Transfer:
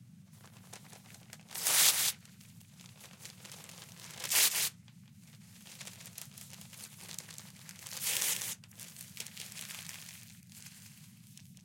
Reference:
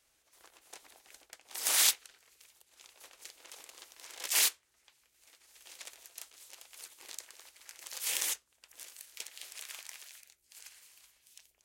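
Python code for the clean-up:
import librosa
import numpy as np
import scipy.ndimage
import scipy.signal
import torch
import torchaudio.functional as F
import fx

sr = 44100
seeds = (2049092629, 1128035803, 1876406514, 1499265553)

y = fx.fix_declip(x, sr, threshold_db=-14.0)
y = fx.noise_reduce(y, sr, print_start_s=4.81, print_end_s=5.31, reduce_db=14.0)
y = fx.fix_echo_inverse(y, sr, delay_ms=197, level_db=-6.0)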